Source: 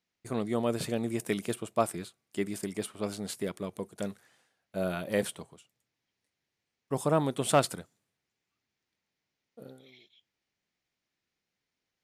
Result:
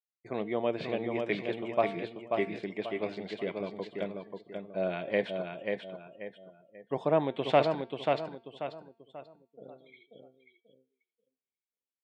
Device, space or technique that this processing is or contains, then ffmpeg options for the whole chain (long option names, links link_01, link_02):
kitchen radio: -filter_complex "[0:a]asettb=1/sr,asplit=3[link_01][link_02][link_03];[link_01]atrim=end=1.914[link_04];[link_02]atrim=start=1.91:end=2.63,asetpts=PTS-STARTPTS,afade=type=in:duration=0.004:curve=qsin,afade=type=out:start_time=0.716:duration=0.004:curve=qsin,asplit=2[link_05][link_06];[link_06]adelay=18,volume=-6dB[link_07];[link_05][link_07]amix=inputs=2:normalize=0,atrim=end_sample=31752[link_08];[link_03]atrim=start=2.626[link_09];[link_04][link_08]acrossfade=duration=0.004:curve1=hsin:curve2=qsin[link_10];[link_10][link_09]acrossfade=duration=0.004:curve1=qsin:curve2=hsin,aecho=1:1:537|1074|1611|2148|2685:0.596|0.214|0.0772|0.0278|0.01,afftdn=noise_reduction=27:noise_floor=-55,highpass=190,equalizer=frequency=240:width_type=q:width=4:gain=-5,equalizer=frequency=660:width_type=q:width=4:gain=3,equalizer=frequency=1300:width_type=q:width=4:gain=-8,equalizer=frequency=2200:width_type=q:width=4:gain=6,lowpass=frequency=3600:width=0.5412,lowpass=frequency=3600:width=1.3066,bandreject=frequency=227.8:width_type=h:width=4,bandreject=frequency=455.6:width_type=h:width=4,bandreject=frequency=683.4:width_type=h:width=4,bandreject=frequency=911.2:width_type=h:width=4,bandreject=frequency=1139:width_type=h:width=4,bandreject=frequency=1366.8:width_type=h:width=4,bandreject=frequency=1594.6:width_type=h:width=4,bandreject=frequency=1822.4:width_type=h:width=4,bandreject=frequency=2050.2:width_type=h:width=4,bandreject=frequency=2278:width_type=h:width=4,bandreject=frequency=2505.8:width_type=h:width=4,bandreject=frequency=2733.6:width_type=h:width=4,bandreject=frequency=2961.4:width_type=h:width=4,bandreject=frequency=3189.2:width_type=h:width=4,bandreject=frequency=3417:width_type=h:width=4,bandreject=frequency=3644.8:width_type=h:width=4,bandreject=frequency=3872.6:width_type=h:width=4,bandreject=frequency=4100.4:width_type=h:width=4,bandreject=frequency=4328.2:width_type=h:width=4,bandreject=frequency=4556:width_type=h:width=4,bandreject=frequency=4783.8:width_type=h:width=4,bandreject=frequency=5011.6:width_type=h:width=4,bandreject=frequency=5239.4:width_type=h:width=4"